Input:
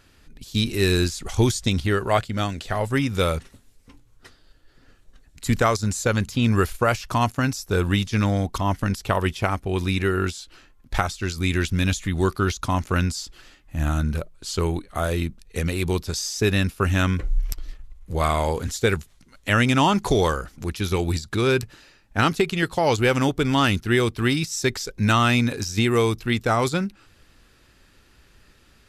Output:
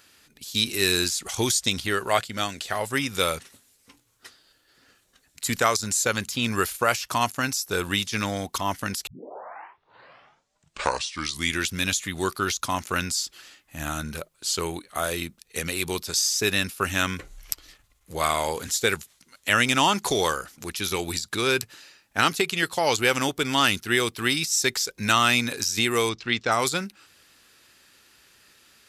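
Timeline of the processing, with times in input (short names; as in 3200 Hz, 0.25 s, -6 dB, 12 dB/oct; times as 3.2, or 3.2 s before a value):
9.07 tape start 2.61 s
26.09–26.52 LPF 5800 Hz 24 dB/oct
whole clip: HPF 110 Hz 6 dB/oct; tilt +2.5 dB/oct; gain -1 dB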